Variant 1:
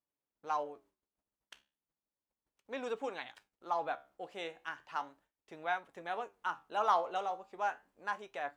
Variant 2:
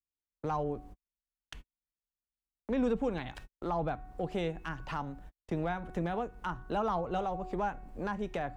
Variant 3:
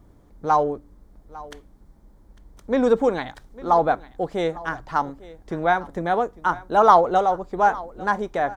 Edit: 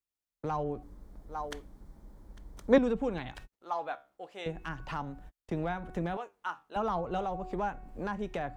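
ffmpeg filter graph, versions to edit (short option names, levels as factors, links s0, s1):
-filter_complex "[0:a]asplit=2[s0][s1];[1:a]asplit=4[s2][s3][s4][s5];[s2]atrim=end=0.832[s6];[2:a]atrim=start=0.828:end=2.782[s7];[s3]atrim=start=2.778:end=3.522[s8];[s0]atrim=start=3.518:end=4.462[s9];[s4]atrim=start=4.458:end=6.172[s10];[s1]atrim=start=6.168:end=6.762[s11];[s5]atrim=start=6.758[s12];[s6][s7]acrossfade=d=0.004:c1=hsin:c2=hsin[s13];[s13][s8]acrossfade=d=0.004:c1=hsin:c2=hsin[s14];[s14][s9]acrossfade=d=0.004:c1=hsin:c2=hsin[s15];[s15][s10]acrossfade=d=0.004:c1=hsin:c2=hsin[s16];[s16][s11]acrossfade=d=0.004:c1=hsin:c2=hsin[s17];[s17][s12]acrossfade=d=0.004:c1=hsin:c2=hsin"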